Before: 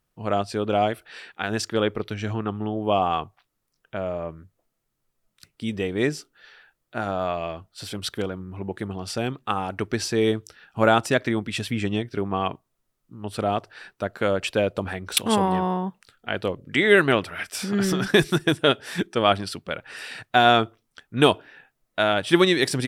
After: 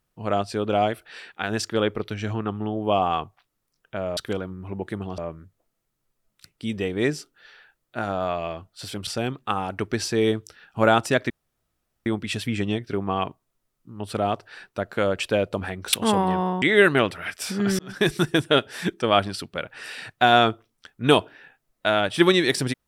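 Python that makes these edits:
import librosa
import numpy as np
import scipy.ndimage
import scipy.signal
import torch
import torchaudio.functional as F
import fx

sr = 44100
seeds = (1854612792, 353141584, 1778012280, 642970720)

y = fx.edit(x, sr, fx.move(start_s=8.06, length_s=1.01, to_s=4.17),
    fx.insert_room_tone(at_s=11.3, length_s=0.76),
    fx.cut(start_s=15.86, length_s=0.89),
    fx.fade_in_span(start_s=17.92, length_s=0.39), tone=tone)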